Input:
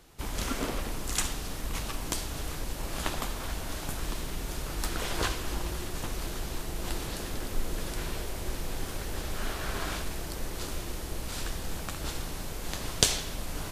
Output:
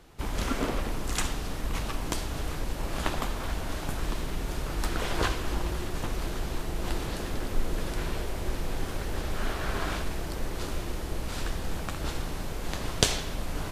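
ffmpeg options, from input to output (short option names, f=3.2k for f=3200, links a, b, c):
-af "highshelf=f=4k:g=-8.5,volume=3.5dB"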